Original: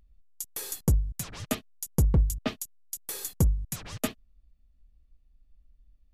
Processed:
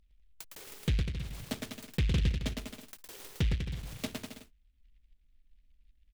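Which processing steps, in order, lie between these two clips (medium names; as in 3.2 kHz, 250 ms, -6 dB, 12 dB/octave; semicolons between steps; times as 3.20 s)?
bouncing-ball echo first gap 110 ms, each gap 0.8×, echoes 5; low-pass that closes with the level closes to 1.3 kHz, closed at -23.5 dBFS; delay time shaken by noise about 2.6 kHz, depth 0.23 ms; trim -6.5 dB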